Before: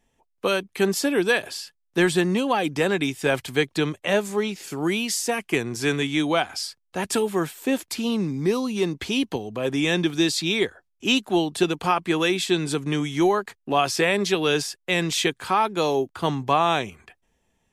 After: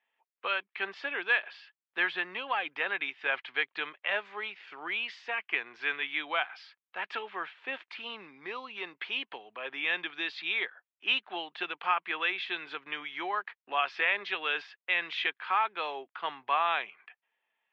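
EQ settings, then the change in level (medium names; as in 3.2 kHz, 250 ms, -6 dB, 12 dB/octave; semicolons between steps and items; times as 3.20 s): high-pass 1.3 kHz 12 dB/octave; low-pass 3 kHz 24 dB/octave; distance through air 130 m; 0.0 dB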